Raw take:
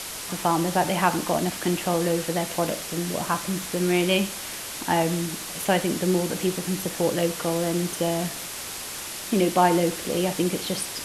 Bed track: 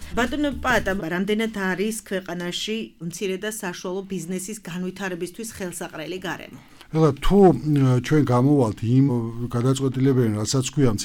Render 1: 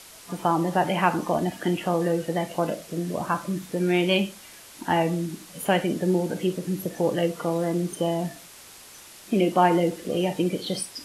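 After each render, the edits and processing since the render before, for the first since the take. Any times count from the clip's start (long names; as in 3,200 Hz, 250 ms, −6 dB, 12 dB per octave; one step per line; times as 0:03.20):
noise reduction from a noise print 12 dB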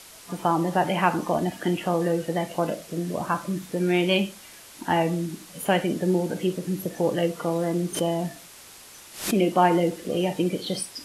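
0:07.94–0:09.38: background raised ahead of every attack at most 120 dB per second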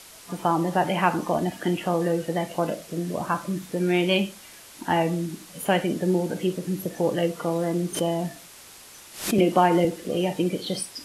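0:09.38–0:09.85: multiband upward and downward compressor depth 70%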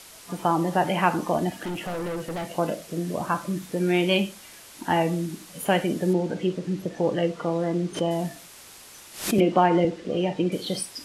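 0:01.53–0:02.47: hard clipping −28 dBFS
0:06.13–0:08.11: high-frequency loss of the air 82 metres
0:09.40–0:10.52: high-frequency loss of the air 110 metres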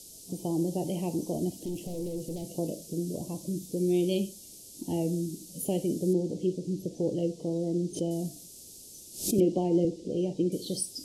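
Chebyshev band-stop filter 350–5,700 Hz, order 2
dynamic equaliser 210 Hz, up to −5 dB, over −38 dBFS, Q 1.5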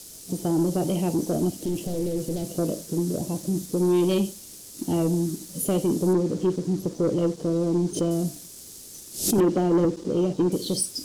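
leveller curve on the samples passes 2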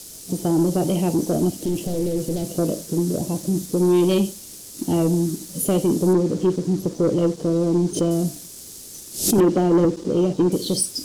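level +4 dB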